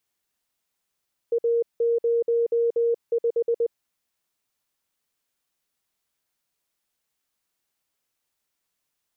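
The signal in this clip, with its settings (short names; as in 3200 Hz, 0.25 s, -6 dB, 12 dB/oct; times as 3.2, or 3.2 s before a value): Morse "A05" 20 wpm 467 Hz -18.5 dBFS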